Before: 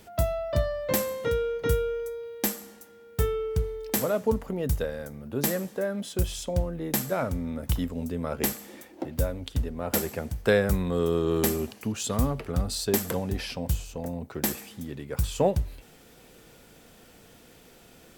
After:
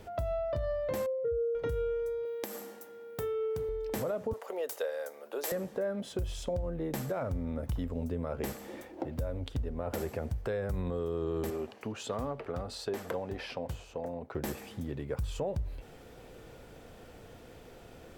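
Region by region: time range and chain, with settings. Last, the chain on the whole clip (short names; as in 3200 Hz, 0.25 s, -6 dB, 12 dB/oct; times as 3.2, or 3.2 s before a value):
1.06–1.55 spectral contrast raised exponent 2.3 + HPF 41 Hz
2.25–3.69 HPF 210 Hz + high shelf 12000 Hz +11.5 dB + compressor, threshold -29 dBFS
4.33–5.52 HPF 450 Hz 24 dB/oct + high shelf 3300 Hz +9 dB
11.5–14.35 HPF 460 Hz 6 dB/oct + high shelf 5100 Hz -10.5 dB
whole clip: EQ curve 110 Hz 0 dB, 190 Hz -7 dB, 530 Hz -1 dB, 11000 Hz -15 dB; limiter -25.5 dBFS; compressor 2:1, threshold -41 dBFS; gain +6 dB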